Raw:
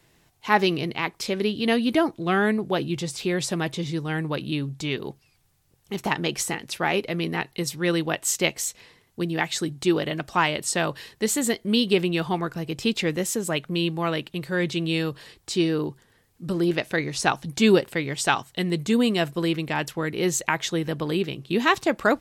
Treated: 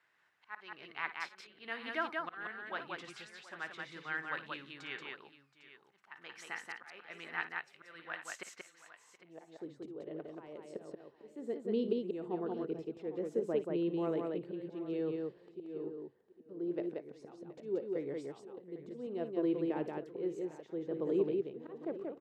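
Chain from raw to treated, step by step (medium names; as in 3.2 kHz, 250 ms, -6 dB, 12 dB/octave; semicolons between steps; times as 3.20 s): slow attack 578 ms; band-pass sweep 1.5 kHz -> 420 Hz, 8.59–9.79 s; multi-tap echo 53/57/181/724/803 ms -19.5/-14/-3/-18.5/-15.5 dB; trim -3.5 dB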